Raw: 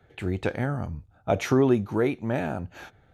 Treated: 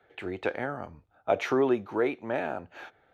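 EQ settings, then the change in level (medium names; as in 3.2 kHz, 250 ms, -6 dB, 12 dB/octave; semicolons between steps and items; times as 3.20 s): three-band isolator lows -17 dB, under 310 Hz, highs -13 dB, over 4 kHz; 0.0 dB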